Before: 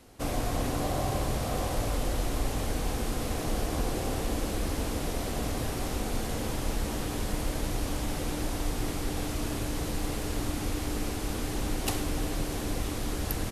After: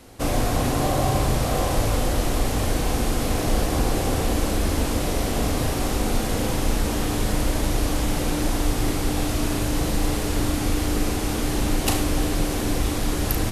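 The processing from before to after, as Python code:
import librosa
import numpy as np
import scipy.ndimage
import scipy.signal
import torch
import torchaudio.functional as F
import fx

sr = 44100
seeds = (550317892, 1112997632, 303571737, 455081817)

y = fx.room_flutter(x, sr, wall_m=6.4, rt60_s=0.25)
y = y * 10.0 ** (7.5 / 20.0)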